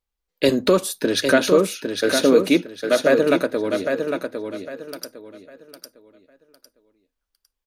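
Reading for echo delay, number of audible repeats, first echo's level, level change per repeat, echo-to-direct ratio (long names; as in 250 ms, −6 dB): 805 ms, 3, −6.0 dB, −11.0 dB, −5.5 dB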